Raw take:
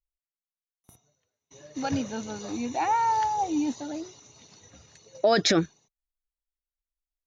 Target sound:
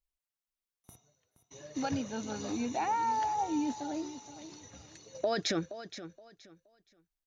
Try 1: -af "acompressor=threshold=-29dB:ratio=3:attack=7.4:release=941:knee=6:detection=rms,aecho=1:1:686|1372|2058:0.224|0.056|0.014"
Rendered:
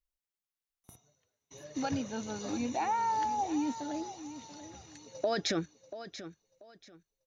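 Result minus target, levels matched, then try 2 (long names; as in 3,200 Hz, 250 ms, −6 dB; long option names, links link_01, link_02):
echo 214 ms late
-af "acompressor=threshold=-29dB:ratio=3:attack=7.4:release=941:knee=6:detection=rms,aecho=1:1:472|944|1416:0.224|0.056|0.014"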